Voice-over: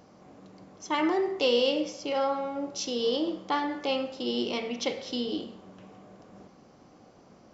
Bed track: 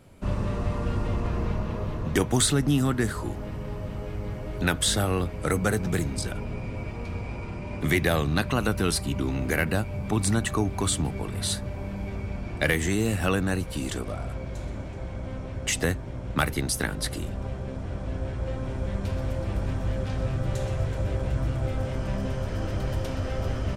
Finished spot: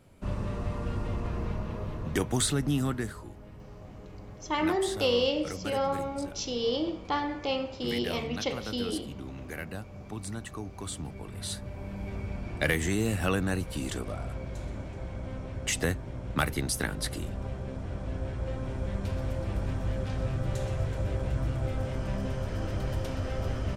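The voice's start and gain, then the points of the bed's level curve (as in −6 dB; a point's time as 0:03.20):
3.60 s, −1.5 dB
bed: 0:02.89 −5 dB
0:03.27 −13.5 dB
0:10.67 −13.5 dB
0:12.17 −3 dB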